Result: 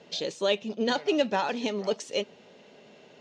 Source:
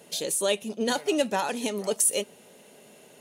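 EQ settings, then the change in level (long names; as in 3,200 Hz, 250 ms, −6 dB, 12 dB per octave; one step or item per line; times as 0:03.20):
inverse Chebyshev low-pass filter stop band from 9,600 Hz, stop band 40 dB
0.0 dB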